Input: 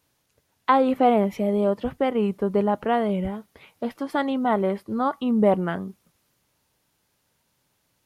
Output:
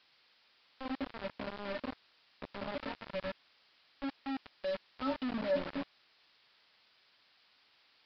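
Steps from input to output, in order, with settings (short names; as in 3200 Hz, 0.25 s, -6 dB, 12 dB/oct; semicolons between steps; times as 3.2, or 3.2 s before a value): resonant high shelf 2700 Hz -6 dB, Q 1.5; notches 60/120/180/240/300/360/420/480/540/600 Hz; transient shaper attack +2 dB, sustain +8 dB; limiter -13.5 dBFS, peak gain reduction 9.5 dB; auto swell 0.791 s; rotary speaker horn 0.7 Hz; metallic resonator 270 Hz, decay 0.26 s, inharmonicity 0.03; soft clip -27 dBFS, distortion -20 dB; bit-crush 7-bit; added noise blue -58 dBFS; air absorption 86 m; downsampling 11025 Hz; gain +4 dB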